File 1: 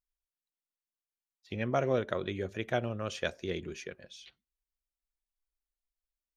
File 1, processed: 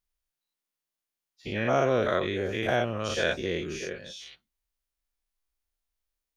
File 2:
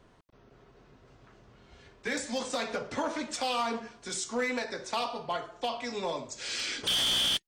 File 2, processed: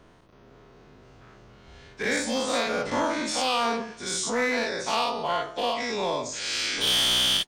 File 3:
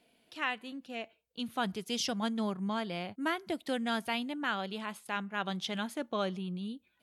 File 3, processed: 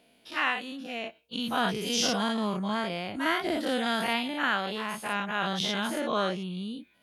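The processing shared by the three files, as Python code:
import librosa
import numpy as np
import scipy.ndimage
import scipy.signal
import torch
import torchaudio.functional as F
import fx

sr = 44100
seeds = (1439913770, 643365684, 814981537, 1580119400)

y = fx.spec_dilate(x, sr, span_ms=120)
y = fx.notch(y, sr, hz=7700.0, q=16.0)
y = F.gain(torch.from_numpy(y), 1.0).numpy()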